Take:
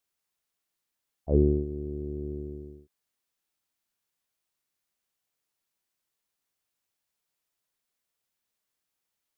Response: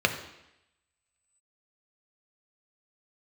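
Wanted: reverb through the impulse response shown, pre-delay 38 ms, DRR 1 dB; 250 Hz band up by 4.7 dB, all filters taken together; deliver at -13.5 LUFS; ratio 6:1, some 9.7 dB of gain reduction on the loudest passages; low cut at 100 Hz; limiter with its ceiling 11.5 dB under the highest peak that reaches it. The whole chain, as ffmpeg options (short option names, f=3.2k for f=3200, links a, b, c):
-filter_complex "[0:a]highpass=100,equalizer=f=250:t=o:g=7,acompressor=threshold=-24dB:ratio=6,alimiter=level_in=2.5dB:limit=-24dB:level=0:latency=1,volume=-2.5dB,asplit=2[a][b];[1:a]atrim=start_sample=2205,adelay=38[c];[b][c]afir=irnorm=-1:irlink=0,volume=-15dB[d];[a][d]amix=inputs=2:normalize=0,volume=21.5dB"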